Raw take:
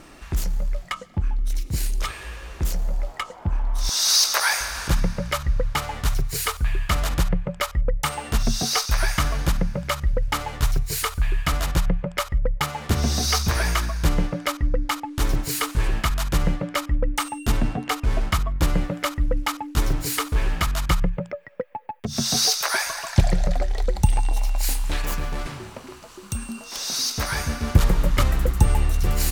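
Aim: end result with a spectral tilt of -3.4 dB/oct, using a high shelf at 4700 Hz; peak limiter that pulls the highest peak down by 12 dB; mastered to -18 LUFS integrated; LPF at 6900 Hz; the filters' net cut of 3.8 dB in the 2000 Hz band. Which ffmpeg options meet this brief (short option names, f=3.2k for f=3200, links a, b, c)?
-af "lowpass=6.9k,equalizer=f=2k:t=o:g=-6,highshelf=f=4.7k:g=7.5,volume=8dB,alimiter=limit=-6dB:level=0:latency=1"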